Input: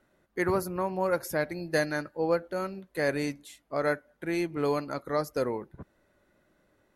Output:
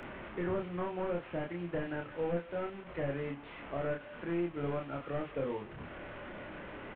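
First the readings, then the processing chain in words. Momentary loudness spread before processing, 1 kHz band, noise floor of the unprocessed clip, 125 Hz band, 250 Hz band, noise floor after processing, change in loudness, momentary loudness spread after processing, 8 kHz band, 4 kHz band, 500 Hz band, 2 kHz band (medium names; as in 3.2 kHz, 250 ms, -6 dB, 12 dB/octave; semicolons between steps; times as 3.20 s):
7 LU, -8.0 dB, -70 dBFS, -2.5 dB, -5.5 dB, -50 dBFS, -7.5 dB, 10 LU, under -35 dB, -10.0 dB, -7.0 dB, -9.5 dB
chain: one-bit delta coder 16 kbps, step -38.5 dBFS; doubling 29 ms -2.5 dB; three bands compressed up and down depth 40%; trim -7.5 dB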